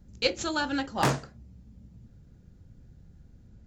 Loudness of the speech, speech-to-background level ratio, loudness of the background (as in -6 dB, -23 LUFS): -30.0 LUFS, 0.0 dB, -30.0 LUFS